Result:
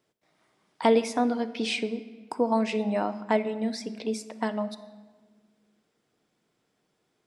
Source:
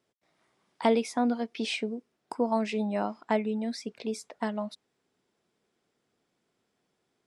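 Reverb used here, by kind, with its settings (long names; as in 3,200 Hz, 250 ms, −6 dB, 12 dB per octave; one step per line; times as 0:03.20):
rectangular room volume 1,400 cubic metres, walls mixed, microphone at 0.5 metres
level +2.5 dB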